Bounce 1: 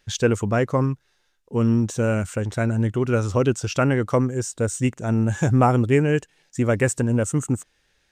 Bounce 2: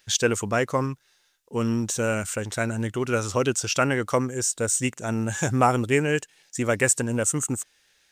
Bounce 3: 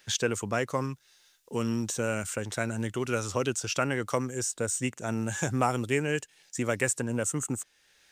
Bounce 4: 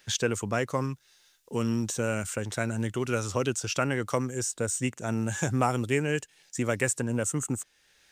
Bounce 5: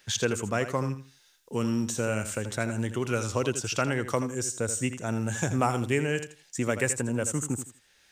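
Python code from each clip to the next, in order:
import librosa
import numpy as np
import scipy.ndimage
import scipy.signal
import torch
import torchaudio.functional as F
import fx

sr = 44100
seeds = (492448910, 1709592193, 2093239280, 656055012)

y1 = fx.tilt_eq(x, sr, slope=2.5)
y2 = fx.band_squash(y1, sr, depth_pct=40)
y2 = F.gain(torch.from_numpy(y2), -5.5).numpy()
y3 = fx.low_shelf(y2, sr, hz=210.0, db=3.5)
y4 = fx.echo_feedback(y3, sr, ms=82, feedback_pct=22, wet_db=-11.0)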